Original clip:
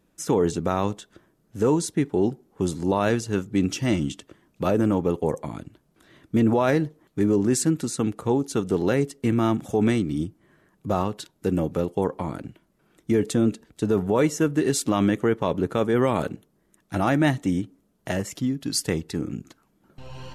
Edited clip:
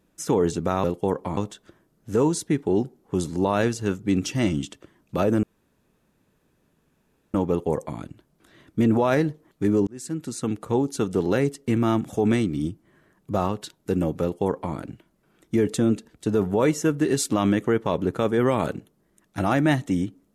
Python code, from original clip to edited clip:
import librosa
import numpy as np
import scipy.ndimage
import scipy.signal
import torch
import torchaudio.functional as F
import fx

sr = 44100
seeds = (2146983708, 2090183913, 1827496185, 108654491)

y = fx.edit(x, sr, fx.insert_room_tone(at_s=4.9, length_s=1.91),
    fx.fade_in_span(start_s=7.43, length_s=1.03, curve='qsin'),
    fx.duplicate(start_s=11.78, length_s=0.53, to_s=0.84), tone=tone)